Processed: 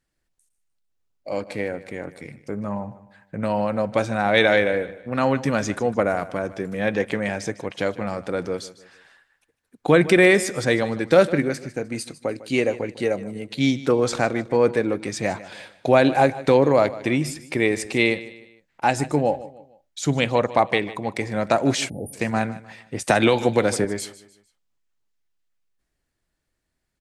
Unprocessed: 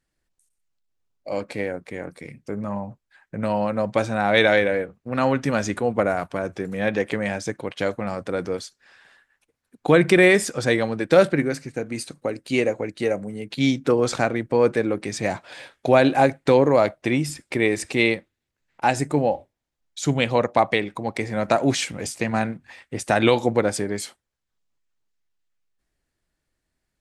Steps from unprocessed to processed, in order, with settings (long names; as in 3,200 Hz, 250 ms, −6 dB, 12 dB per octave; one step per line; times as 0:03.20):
repeating echo 152 ms, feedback 38%, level −17 dB
0:21.89–0:22.13: time-frequency box erased 880–9,100 Hz
0:23.07–0:23.85: multiband upward and downward compressor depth 100%